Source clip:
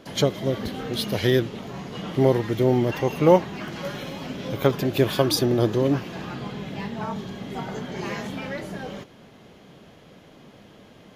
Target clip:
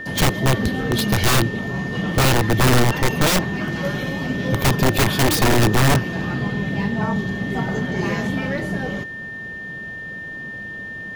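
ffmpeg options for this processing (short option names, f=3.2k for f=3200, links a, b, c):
-af "aeval=exprs='(mod(7.5*val(0)+1,2)-1)/7.5':c=same,lowshelf=f=290:g=9,aeval=exprs='val(0)+0.02*sin(2*PI*1800*n/s)':c=same,volume=4dB"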